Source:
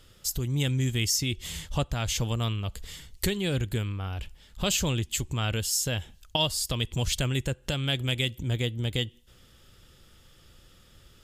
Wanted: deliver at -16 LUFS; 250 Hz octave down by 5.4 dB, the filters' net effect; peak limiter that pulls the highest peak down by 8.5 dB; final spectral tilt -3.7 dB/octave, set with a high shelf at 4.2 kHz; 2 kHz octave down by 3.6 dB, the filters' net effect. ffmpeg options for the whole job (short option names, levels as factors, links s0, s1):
-af "equalizer=f=250:t=o:g=-8.5,equalizer=f=2000:t=o:g=-6.5,highshelf=f=4200:g=4.5,volume=5.62,alimiter=limit=0.631:level=0:latency=1"